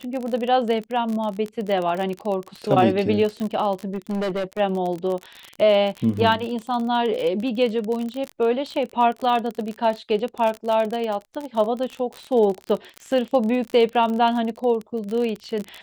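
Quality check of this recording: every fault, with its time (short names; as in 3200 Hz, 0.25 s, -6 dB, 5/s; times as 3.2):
crackle 34/s -25 dBFS
3.94–4.6 clipped -21.5 dBFS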